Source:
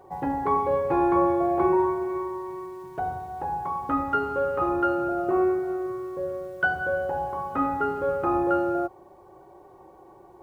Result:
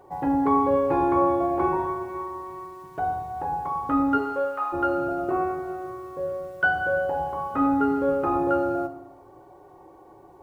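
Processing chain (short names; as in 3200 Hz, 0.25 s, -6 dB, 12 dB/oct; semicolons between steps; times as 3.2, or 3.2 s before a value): 4.17–4.72 HPF 270 Hz -> 990 Hz 24 dB/oct; FDN reverb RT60 0.83 s, low-frequency decay 1.45×, high-frequency decay 0.9×, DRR 7.5 dB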